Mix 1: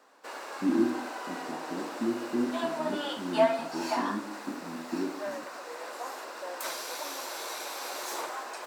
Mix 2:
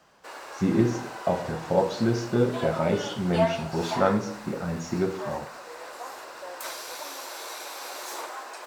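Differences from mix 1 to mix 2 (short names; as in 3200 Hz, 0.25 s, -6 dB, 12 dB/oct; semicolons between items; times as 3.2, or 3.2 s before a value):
speech: remove Butterworth band-pass 290 Hz, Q 3.5; master: add HPF 250 Hz 6 dB/oct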